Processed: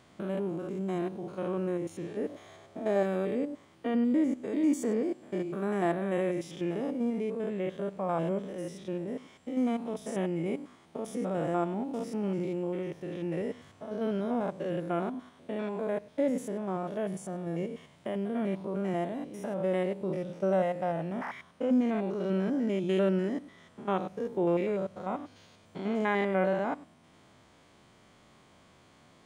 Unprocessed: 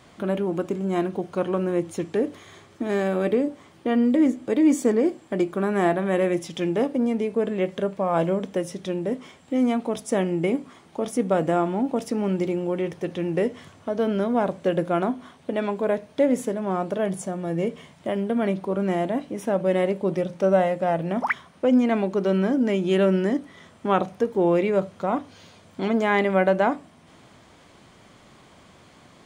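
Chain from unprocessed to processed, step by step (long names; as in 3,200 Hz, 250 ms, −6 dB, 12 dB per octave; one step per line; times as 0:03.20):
spectrum averaged block by block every 100 ms
0:02.29–0:03.03: parametric band 650 Hz +11.5 dB 0.68 octaves
level −6.5 dB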